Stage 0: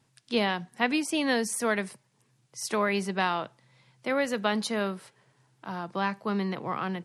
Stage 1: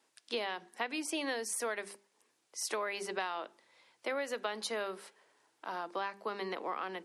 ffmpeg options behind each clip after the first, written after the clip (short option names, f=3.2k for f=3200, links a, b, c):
-af "highpass=f=310:w=0.5412,highpass=f=310:w=1.3066,bandreject=f=50:t=h:w=6,bandreject=f=100:t=h:w=6,bandreject=f=150:t=h:w=6,bandreject=f=200:t=h:w=6,bandreject=f=250:t=h:w=6,bandreject=f=300:t=h:w=6,bandreject=f=350:t=h:w=6,bandreject=f=400:t=h:w=6,acompressor=threshold=-32dB:ratio=6,volume=-1dB"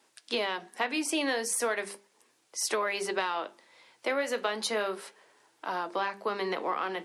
-filter_complex "[0:a]flanger=delay=4.8:depth=9.9:regen=-66:speed=0.37:shape=triangular,asplit=2[a][b];[b]asoftclip=type=tanh:threshold=-35.5dB,volume=-11dB[c];[a][c]amix=inputs=2:normalize=0,volume=9dB"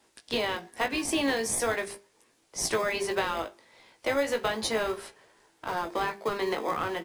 -filter_complex "[0:a]asplit=2[a][b];[b]acrusher=samples=31:mix=1:aa=0.000001,volume=-9.5dB[c];[a][c]amix=inputs=2:normalize=0,asplit=2[d][e];[e]adelay=18,volume=-6.5dB[f];[d][f]amix=inputs=2:normalize=0"